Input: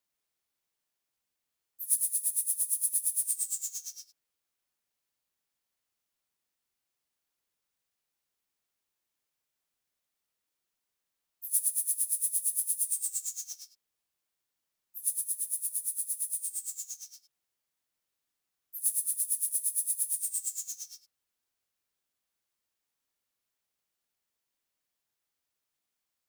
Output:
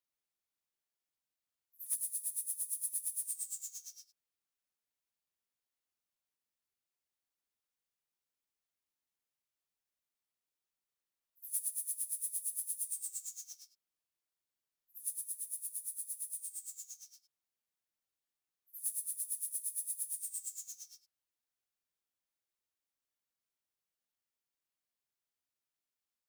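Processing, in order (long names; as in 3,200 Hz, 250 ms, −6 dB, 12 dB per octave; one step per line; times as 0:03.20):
gain into a clipping stage and back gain 17.5 dB
echo ahead of the sound 68 ms −22 dB
level −8.5 dB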